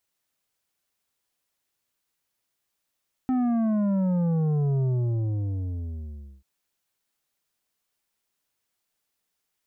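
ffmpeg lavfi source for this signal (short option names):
-f lavfi -i "aevalsrc='0.0794*clip((3.14-t)/1.61,0,1)*tanh(2.66*sin(2*PI*260*3.14/log(65/260)*(exp(log(65/260)*t/3.14)-1)))/tanh(2.66)':d=3.14:s=44100"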